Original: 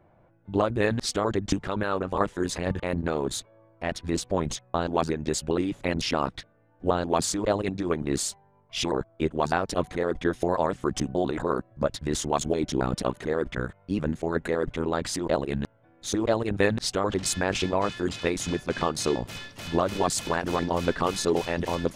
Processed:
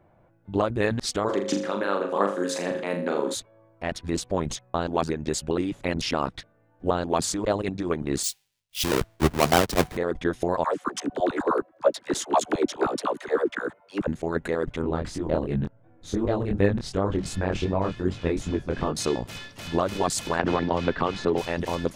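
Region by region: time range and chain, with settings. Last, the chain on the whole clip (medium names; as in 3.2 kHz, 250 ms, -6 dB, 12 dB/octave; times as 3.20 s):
1.28–3.33 s: high-pass 200 Hz 24 dB/octave + whistle 540 Hz -29 dBFS + flutter echo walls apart 6.9 m, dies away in 0.43 s
8.23–9.97 s: square wave that keeps the level + three bands expanded up and down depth 100%
10.64–14.07 s: LFO high-pass saw down 9.6 Hz 250–1600 Hz + phase dispersion lows, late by 42 ms, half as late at 560 Hz
14.82–18.96 s: tilt EQ -2.5 dB/octave + chorus 2.7 Hz, delay 20 ms, depth 5.7 ms
20.39–21.38 s: low-pass 3.6 kHz + three bands compressed up and down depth 100%
whole clip: none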